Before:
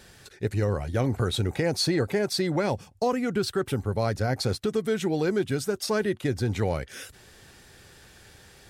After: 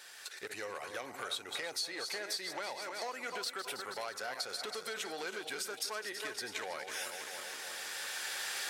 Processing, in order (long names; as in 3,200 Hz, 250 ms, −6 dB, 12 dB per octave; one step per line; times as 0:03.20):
feedback delay that plays each chunk backwards 161 ms, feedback 68%, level −10 dB
camcorder AGC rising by 10 dB per second
high-pass filter 950 Hz 12 dB per octave
downward compressor 6 to 1, threshold −36 dBFS, peak gain reduction 12.5 dB
saturating transformer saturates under 1,900 Hz
level +1 dB